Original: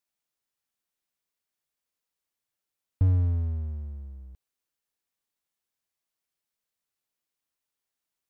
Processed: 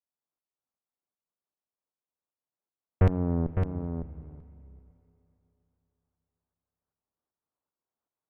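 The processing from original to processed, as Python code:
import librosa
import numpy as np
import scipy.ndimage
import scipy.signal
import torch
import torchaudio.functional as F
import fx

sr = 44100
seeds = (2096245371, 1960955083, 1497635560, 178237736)

p1 = scipy.signal.sosfilt(scipy.signal.butter(4, 1200.0, 'lowpass', fs=sr, output='sos'), x)
p2 = fx.low_shelf(p1, sr, hz=78.0, db=-8.5)
p3 = fx.rider(p2, sr, range_db=10, speed_s=2.0)
p4 = p2 + (p3 * 10.0 ** (0.0 / 20.0))
p5 = fx.tremolo_shape(p4, sr, shape='saw_up', hz=2.6, depth_pct=65)
p6 = fx.cheby_harmonics(p5, sr, harmonics=(4, 7), levels_db=(-10, -13), full_scale_db=-13.0)
p7 = p6 + 10.0 ** (-6.5 / 20.0) * np.pad(p6, (int(557 * sr / 1000.0), 0))[:len(p6)]
y = fx.rev_spring(p7, sr, rt60_s=3.3, pass_ms=(31, 36), chirp_ms=55, drr_db=18.5)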